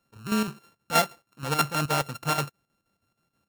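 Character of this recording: a buzz of ramps at a fixed pitch in blocks of 32 samples; chopped level 6.3 Hz, depth 60%, duty 70%; AAC

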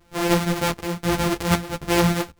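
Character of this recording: a buzz of ramps at a fixed pitch in blocks of 256 samples; tremolo saw up 1.3 Hz, depth 70%; a shimmering, thickened sound

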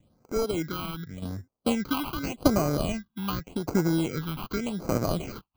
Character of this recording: aliases and images of a low sample rate 1.8 kHz, jitter 0%; phasing stages 6, 0.86 Hz, lowest notch 490–3300 Hz; tremolo saw down 0.82 Hz, depth 60%

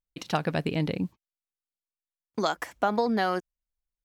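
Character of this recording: noise floor -95 dBFS; spectral tilt -4.5 dB/octave

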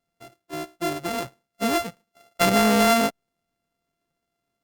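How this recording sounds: a buzz of ramps at a fixed pitch in blocks of 64 samples; Opus

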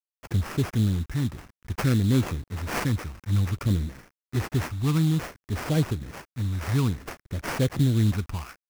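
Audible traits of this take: a quantiser's noise floor 8-bit, dither none; phasing stages 4, 0.56 Hz, lowest notch 540–1100 Hz; aliases and images of a low sample rate 3.8 kHz, jitter 20%

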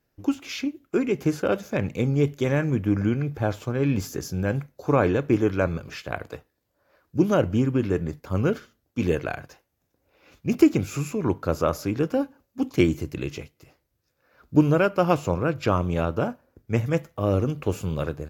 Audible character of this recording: AAC

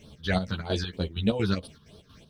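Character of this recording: phasing stages 6, 3.2 Hz, lowest notch 540–2100 Hz; a quantiser's noise floor 12-bit, dither none; chopped level 4.3 Hz, depth 65%, duty 60%; a shimmering, thickened sound

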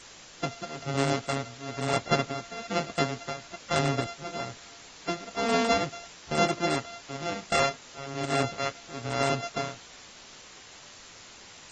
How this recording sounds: a buzz of ramps at a fixed pitch in blocks of 64 samples; tremolo triangle 1.1 Hz, depth 95%; a quantiser's noise floor 8-bit, dither triangular; AAC

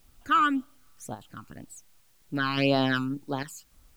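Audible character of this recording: random-step tremolo 3.5 Hz, depth 70%; phasing stages 12, 1.9 Hz, lowest notch 570–2200 Hz; a quantiser's noise floor 12-bit, dither triangular

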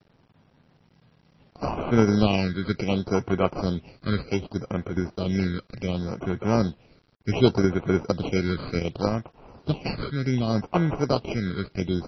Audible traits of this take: aliases and images of a low sample rate 1.8 kHz, jitter 0%; phasing stages 8, 0.67 Hz, lowest notch 790–4600 Hz; a quantiser's noise floor 10-bit, dither none; MP3

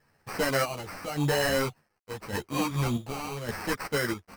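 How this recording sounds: aliases and images of a low sample rate 3.5 kHz, jitter 0%; chopped level 0.86 Hz, depth 60%, duty 55%; a quantiser's noise floor 12-bit, dither none; a shimmering, thickened sound

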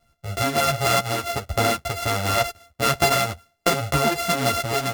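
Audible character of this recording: a buzz of ramps at a fixed pitch in blocks of 64 samples; tremolo triangle 1.4 Hz, depth 50%; a shimmering, thickened sound

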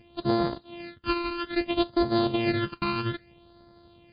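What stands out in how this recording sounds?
a buzz of ramps at a fixed pitch in blocks of 128 samples; phasing stages 12, 0.61 Hz, lowest notch 580–2600 Hz; MP3

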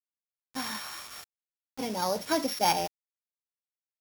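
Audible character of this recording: a buzz of ramps at a fixed pitch in blocks of 8 samples; random-step tremolo 2.2 Hz; a quantiser's noise floor 8-bit, dither none

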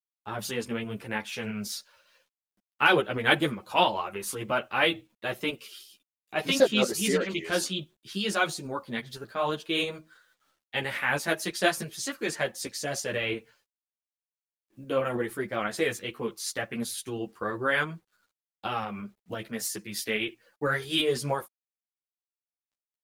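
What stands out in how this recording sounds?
a quantiser's noise floor 12-bit, dither none; tremolo saw up 6 Hz, depth 35%; a shimmering, thickened sound

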